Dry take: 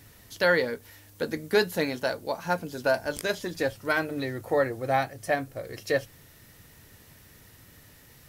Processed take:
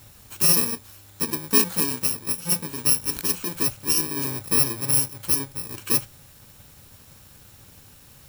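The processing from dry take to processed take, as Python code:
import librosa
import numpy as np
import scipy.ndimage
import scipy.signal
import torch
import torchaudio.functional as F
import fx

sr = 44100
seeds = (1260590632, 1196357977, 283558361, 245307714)

y = fx.bit_reversed(x, sr, seeds[0], block=64)
y = y * 10.0 ** (4.0 / 20.0)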